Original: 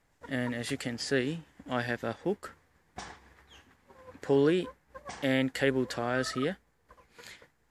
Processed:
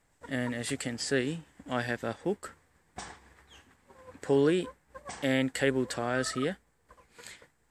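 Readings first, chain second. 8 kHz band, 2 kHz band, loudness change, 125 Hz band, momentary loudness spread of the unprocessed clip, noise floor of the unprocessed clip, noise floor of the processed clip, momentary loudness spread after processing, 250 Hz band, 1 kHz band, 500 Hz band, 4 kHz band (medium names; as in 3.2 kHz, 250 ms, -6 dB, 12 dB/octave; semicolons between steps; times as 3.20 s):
+5.0 dB, 0.0 dB, 0.0 dB, 0.0 dB, 20 LU, -70 dBFS, -70 dBFS, 20 LU, 0.0 dB, 0.0 dB, 0.0 dB, 0.0 dB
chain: peaking EQ 8.1 kHz +11 dB 0.23 oct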